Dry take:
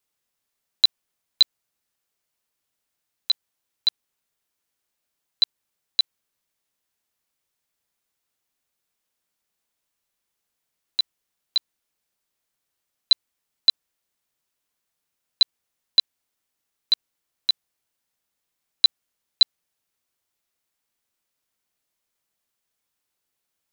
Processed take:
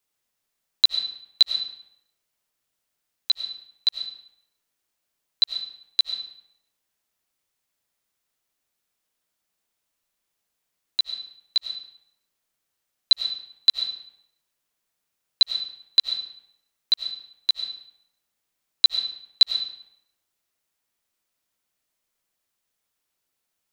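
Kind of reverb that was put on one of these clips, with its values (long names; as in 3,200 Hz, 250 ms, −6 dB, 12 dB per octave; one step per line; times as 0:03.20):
comb and all-pass reverb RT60 0.8 s, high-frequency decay 0.8×, pre-delay 55 ms, DRR 6 dB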